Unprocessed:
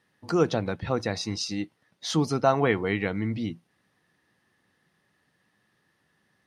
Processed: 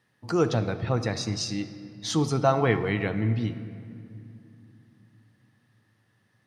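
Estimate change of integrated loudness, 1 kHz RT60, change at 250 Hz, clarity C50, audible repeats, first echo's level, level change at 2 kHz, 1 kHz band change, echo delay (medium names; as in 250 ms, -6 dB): +0.5 dB, 2.3 s, 0.0 dB, 11.0 dB, no echo, no echo, -0.5 dB, -0.5 dB, no echo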